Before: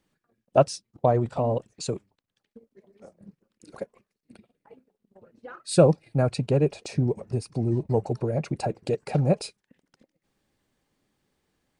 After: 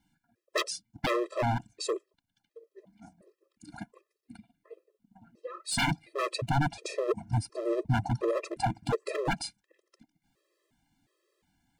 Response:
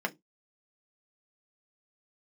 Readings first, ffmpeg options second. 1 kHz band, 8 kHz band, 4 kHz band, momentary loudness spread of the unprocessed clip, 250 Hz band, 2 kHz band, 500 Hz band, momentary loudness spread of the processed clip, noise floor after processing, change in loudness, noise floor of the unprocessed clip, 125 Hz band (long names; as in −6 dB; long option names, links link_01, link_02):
−1.5 dB, −1.0 dB, +3.0 dB, 17 LU, −7.0 dB, +8.0 dB, −8.0 dB, 13 LU, −85 dBFS, −6.0 dB, −85 dBFS, −7.5 dB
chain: -af "aeval=exprs='0.0794*(abs(mod(val(0)/0.0794+3,4)-2)-1)':channel_layout=same,afftfilt=real='re*gt(sin(2*PI*1.4*pts/sr)*(1-2*mod(floor(b*sr/1024/340),2)),0)':imag='im*gt(sin(2*PI*1.4*pts/sr)*(1-2*mod(floor(b*sr/1024/340),2)),0)':win_size=1024:overlap=0.75,volume=3dB"